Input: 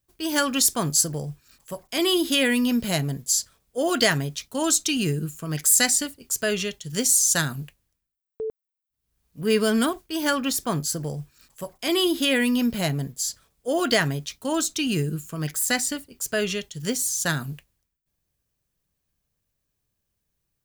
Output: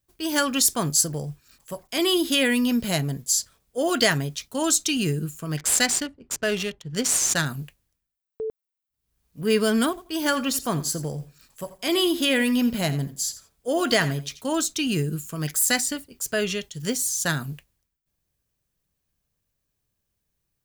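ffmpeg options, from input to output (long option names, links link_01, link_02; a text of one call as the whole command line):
ffmpeg -i in.wav -filter_complex "[0:a]asettb=1/sr,asplit=3[link_01][link_02][link_03];[link_01]atrim=end=5.574[link_04];[link_02]atrim=start=5.57:end=7.46,asetpts=PTS-STARTPTS,afade=type=in:duration=0.004:curve=qsin,afade=type=out:start_time=1.886:duration=0.004:curve=qsin,adynamicsmooth=sensitivity=7:basefreq=1300[link_05];[link_03]atrim=start=7.456[link_06];[link_04][link_05]acrossfade=duration=0.004:curve1=hsin:curve2=qsin[link_07];[link_07][link_06]acrossfade=duration=0.004:curve1=qsin:curve2=hsin,asettb=1/sr,asplit=3[link_08][link_09][link_10];[link_08]atrim=end=9.894[link_11];[link_09]atrim=start=9.89:end=14.43,asetpts=PTS-STARTPTS,afade=type=in:duration=0.004:curve=qsin,afade=type=out:start_time=4.536:duration=0.004:curve=qsin,aecho=1:1:85|170:0.178|0.032,atrim=end_sample=200214[link_12];[link_10]atrim=start=14.426[link_13];[link_11][link_12]acrossfade=duration=0.004:curve1=hsin:curve2=qsin[link_14];[link_14][link_13]acrossfade=duration=0.004:curve1=qsin:curve2=hsin,asettb=1/sr,asplit=3[link_15][link_16][link_17];[link_15]atrim=end=15.124[link_18];[link_16]atrim=start=15.12:end=15.81,asetpts=PTS-STARTPTS,afade=type=in:duration=0.004:curve=qsin,afade=type=out:start_time=0.686:duration=0.004:curve=qsin,equalizer=frequency=12000:width_type=o:width=2.5:gain=4[link_19];[link_17]atrim=start=15.806[link_20];[link_18][link_19]acrossfade=duration=0.004:curve1=hsin:curve2=qsin[link_21];[link_21][link_20]acrossfade=duration=0.004:curve1=qsin:curve2=hsin" out.wav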